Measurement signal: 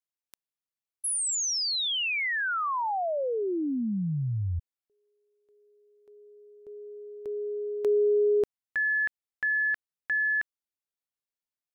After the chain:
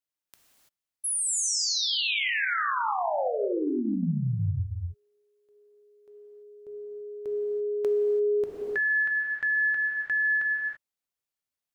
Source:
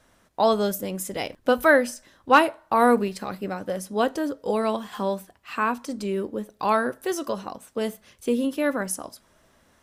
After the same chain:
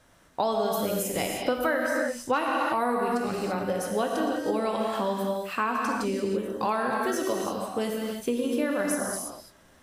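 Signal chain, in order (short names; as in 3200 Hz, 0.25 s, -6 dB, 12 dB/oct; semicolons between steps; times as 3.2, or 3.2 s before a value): non-linear reverb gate 0.36 s flat, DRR 0 dB; compressor 6:1, threshold -23 dBFS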